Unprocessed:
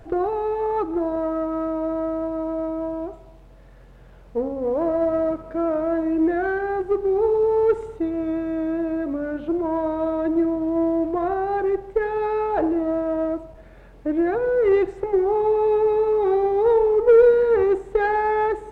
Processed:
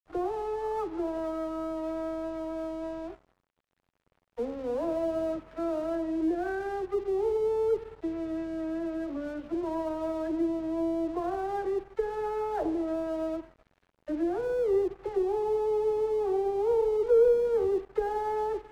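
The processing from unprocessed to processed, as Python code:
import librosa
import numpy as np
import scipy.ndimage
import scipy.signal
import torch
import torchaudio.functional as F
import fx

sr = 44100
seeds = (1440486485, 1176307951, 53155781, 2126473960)

y = fx.dispersion(x, sr, late='lows', ms=51.0, hz=480.0)
y = fx.env_lowpass_down(y, sr, base_hz=860.0, full_db=-16.5)
y = np.sign(y) * np.maximum(np.abs(y) - 10.0 ** (-41.5 / 20.0), 0.0)
y = y * 10.0 ** (-7.5 / 20.0)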